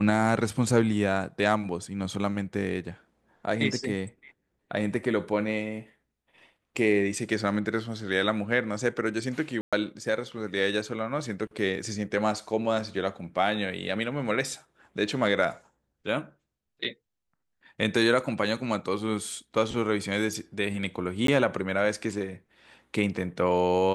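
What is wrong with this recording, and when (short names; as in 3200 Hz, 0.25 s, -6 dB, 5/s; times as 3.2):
9.61–9.73 gap 0.116 s
21.27–21.28 gap 13 ms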